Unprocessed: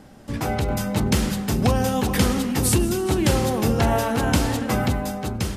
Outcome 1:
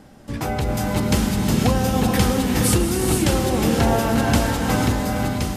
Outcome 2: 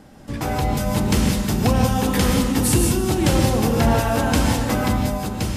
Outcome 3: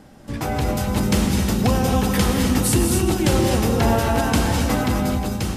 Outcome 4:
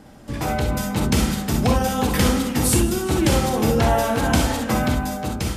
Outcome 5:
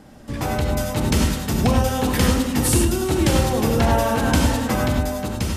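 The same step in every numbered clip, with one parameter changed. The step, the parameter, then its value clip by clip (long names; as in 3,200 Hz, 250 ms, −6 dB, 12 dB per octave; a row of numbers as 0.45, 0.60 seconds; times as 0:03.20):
reverb whose tail is shaped and stops, gate: 520, 200, 290, 80, 120 milliseconds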